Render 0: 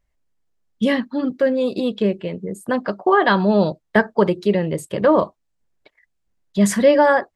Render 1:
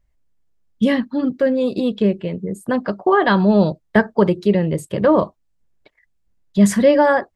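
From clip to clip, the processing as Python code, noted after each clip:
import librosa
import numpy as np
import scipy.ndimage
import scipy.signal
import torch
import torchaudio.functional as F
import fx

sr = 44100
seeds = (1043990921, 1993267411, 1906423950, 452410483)

y = fx.low_shelf(x, sr, hz=230.0, db=8.0)
y = F.gain(torch.from_numpy(y), -1.0).numpy()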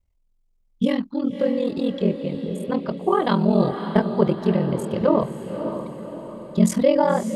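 y = x * np.sin(2.0 * np.pi * 21.0 * np.arange(len(x)) / sr)
y = fx.peak_eq(y, sr, hz=1700.0, db=-11.5, octaves=0.34)
y = fx.echo_diffused(y, sr, ms=571, feedback_pct=50, wet_db=-8.5)
y = F.gain(torch.from_numpy(y), -1.5).numpy()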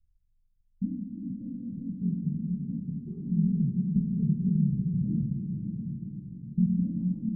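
y = scipy.signal.sosfilt(scipy.signal.cheby2(4, 60, 590.0, 'lowpass', fs=sr, output='sos'), x)
y = fx.room_shoebox(y, sr, seeds[0], volume_m3=210.0, walls='hard', distance_m=0.34)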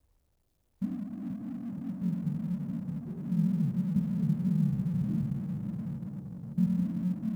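y = fx.law_mismatch(x, sr, coded='mu')
y = scipy.signal.sosfilt(scipy.signal.butter(2, 49.0, 'highpass', fs=sr, output='sos'), y)
y = F.gain(torch.from_numpy(y), -3.0).numpy()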